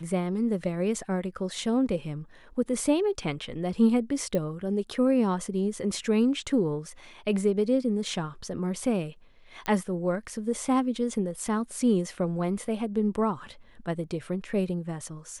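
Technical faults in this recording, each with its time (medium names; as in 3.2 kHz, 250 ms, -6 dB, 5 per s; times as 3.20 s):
4.35 s: pop -17 dBFS
9.66 s: pop -15 dBFS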